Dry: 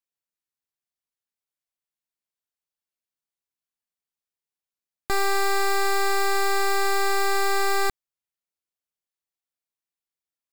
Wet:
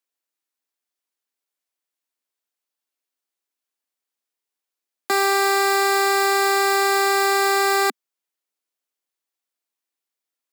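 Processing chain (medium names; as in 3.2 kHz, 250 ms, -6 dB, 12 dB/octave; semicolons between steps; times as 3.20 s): steep high-pass 230 Hz 48 dB/octave; trim +5.5 dB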